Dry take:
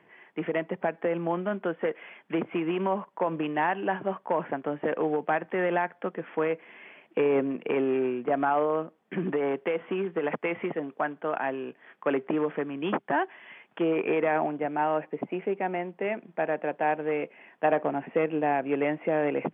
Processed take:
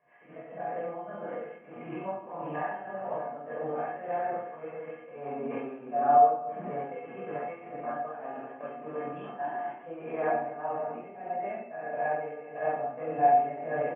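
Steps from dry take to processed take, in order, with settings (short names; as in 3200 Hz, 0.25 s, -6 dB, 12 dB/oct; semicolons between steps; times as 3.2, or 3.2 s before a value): stepped spectrum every 0.1 s; LPF 2400 Hz 12 dB/oct; bell 300 Hz -8 dB 1.3 oct; notches 60/120/180 Hz; feedback echo 0.358 s, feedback 29%, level -13.5 dB; shoebox room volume 990 m³, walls mixed, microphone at 5.6 m; tremolo triangle 1.2 Hz, depth 70%; bell 610 Hz +9 dB 1.5 oct; tempo 1.4×; resonator 240 Hz, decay 0.32 s, harmonics odd, mix 90%; gain +1 dB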